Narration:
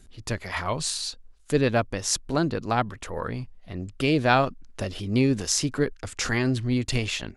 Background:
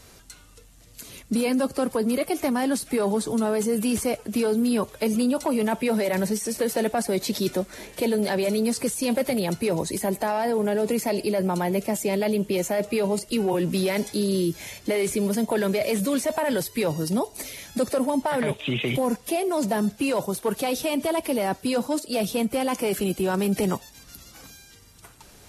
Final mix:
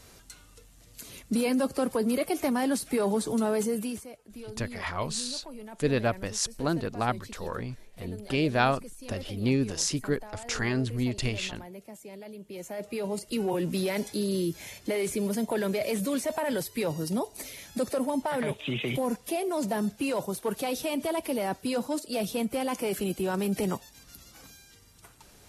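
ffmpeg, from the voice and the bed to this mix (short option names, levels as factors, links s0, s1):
-filter_complex "[0:a]adelay=4300,volume=0.631[s0];[1:a]volume=3.98,afade=t=out:st=3.6:d=0.46:silence=0.141254,afade=t=in:st=12.43:d=1.01:silence=0.177828[s1];[s0][s1]amix=inputs=2:normalize=0"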